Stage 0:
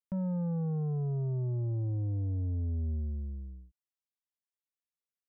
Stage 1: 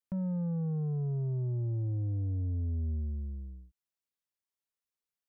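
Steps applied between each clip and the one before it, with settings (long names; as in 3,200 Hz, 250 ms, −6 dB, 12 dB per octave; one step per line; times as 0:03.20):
dynamic equaliser 850 Hz, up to −5 dB, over −53 dBFS, Q 0.78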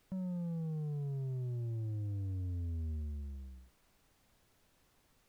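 background noise pink −65 dBFS
level −6 dB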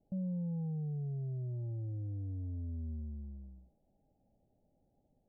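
Chebyshev low-pass with heavy ripple 840 Hz, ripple 6 dB
level +3 dB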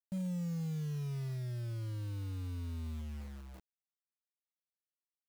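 bit reduction 9 bits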